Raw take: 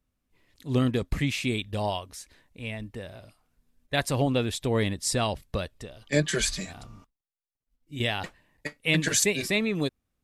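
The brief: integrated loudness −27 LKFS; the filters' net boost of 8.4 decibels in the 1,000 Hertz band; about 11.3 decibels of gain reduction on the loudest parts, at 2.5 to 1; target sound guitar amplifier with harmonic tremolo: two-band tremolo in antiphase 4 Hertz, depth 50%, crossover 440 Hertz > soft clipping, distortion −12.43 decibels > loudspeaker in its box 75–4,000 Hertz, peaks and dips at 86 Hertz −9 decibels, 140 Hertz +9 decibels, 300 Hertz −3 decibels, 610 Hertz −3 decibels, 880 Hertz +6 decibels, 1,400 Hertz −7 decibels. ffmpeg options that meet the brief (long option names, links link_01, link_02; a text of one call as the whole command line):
ffmpeg -i in.wav -filter_complex "[0:a]equalizer=frequency=1000:width_type=o:gain=8.5,acompressor=threshold=-36dB:ratio=2.5,acrossover=split=440[link_01][link_02];[link_01]aeval=exprs='val(0)*(1-0.5/2+0.5/2*cos(2*PI*4*n/s))':channel_layout=same[link_03];[link_02]aeval=exprs='val(0)*(1-0.5/2-0.5/2*cos(2*PI*4*n/s))':channel_layout=same[link_04];[link_03][link_04]amix=inputs=2:normalize=0,asoftclip=threshold=-32dB,highpass=75,equalizer=frequency=86:width_type=q:width=4:gain=-9,equalizer=frequency=140:width_type=q:width=4:gain=9,equalizer=frequency=300:width_type=q:width=4:gain=-3,equalizer=frequency=610:width_type=q:width=4:gain=-3,equalizer=frequency=880:width_type=q:width=4:gain=6,equalizer=frequency=1400:width_type=q:width=4:gain=-7,lowpass=frequency=4000:width=0.5412,lowpass=frequency=4000:width=1.3066,volume=14.5dB" out.wav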